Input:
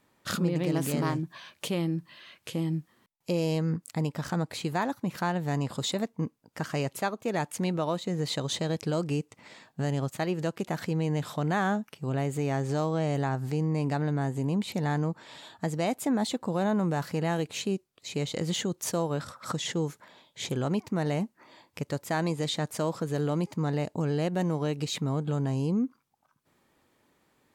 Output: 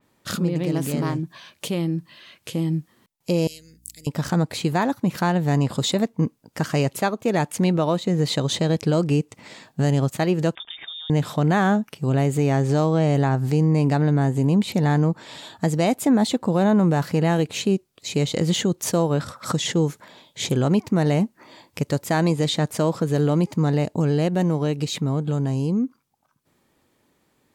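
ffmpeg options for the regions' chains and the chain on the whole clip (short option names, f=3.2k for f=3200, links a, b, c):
-filter_complex "[0:a]asettb=1/sr,asplit=3[a][b][c];[a]atrim=end=3.474[d];[b]atrim=start=3.47:end=4.07,asetpts=PTS-STARTPTS,afade=t=in:d=0.004:c=qsin,afade=t=out:st=0.596:d=0.004:c=qsin,aderivative,aeval=exprs='val(0)+0.000501*(sin(2*PI*60*n/s)+sin(2*PI*2*60*n/s)/2+sin(2*PI*3*60*n/s)/3+sin(2*PI*4*60*n/s)/4+sin(2*PI*5*60*n/s)/5)':c=same,asuperstop=centerf=1000:order=4:qfactor=0.61[e];[c]atrim=start=4.066[f];[d][e]acrossfade=d=0.004:c1=hsin:c2=qsin[g];[g][f]acrossfade=d=0.004:c1=qsin:c2=hsin,asettb=1/sr,asplit=3[h][i][j];[h]atrim=end=10.554[k];[i]atrim=start=10.55:end=11.1,asetpts=PTS-STARTPTS,afade=t=in:d=0.004:c=qsin,afade=t=out:st=0.546:d=0.004:c=qsin,acompressor=threshold=-39dB:ratio=8:attack=3.2:release=140:knee=1:detection=peak,lowpass=f=3.2k:t=q:w=0.5098,lowpass=f=3.2k:t=q:w=0.6013,lowpass=f=3.2k:t=q:w=0.9,lowpass=f=3.2k:t=q:w=2.563,afreqshift=-3800[l];[j]atrim=start=11.096[m];[k][l]acrossfade=d=0.004:c1=hsin:c2=qsin[n];[n][m]acrossfade=d=0.004:c1=qsin:c2=hsin,equalizer=f=1.3k:t=o:w=2.6:g=-4,dynaudnorm=f=310:g=21:m=5dB,adynamicequalizer=threshold=0.00562:dfrequency=3900:dqfactor=0.7:tfrequency=3900:tqfactor=0.7:attack=5:release=100:ratio=0.375:range=2.5:mode=cutabove:tftype=highshelf,volume=5dB"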